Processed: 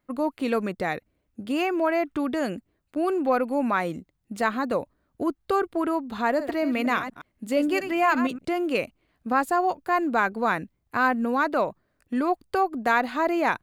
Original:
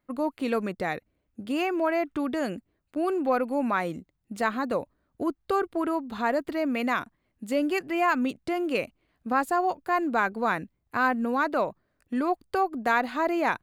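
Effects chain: 6.28–8.45 s: chunks repeated in reverse 117 ms, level -9.5 dB; trim +2 dB

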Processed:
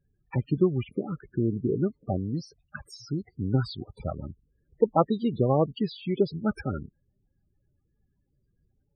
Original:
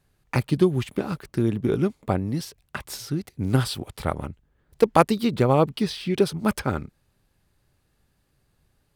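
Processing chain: loudest bins only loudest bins 16; trim -3.5 dB

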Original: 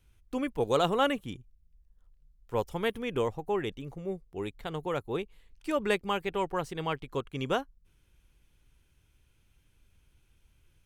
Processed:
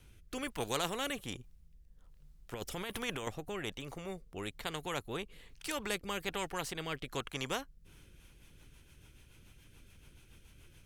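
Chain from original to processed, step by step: 2.54–3.27 s: compressor with a negative ratio -34 dBFS, ratio -1; rotary cabinet horn 1.2 Hz, later 7 Hz, at 7.72 s; spectrum-flattening compressor 2:1; trim -3.5 dB

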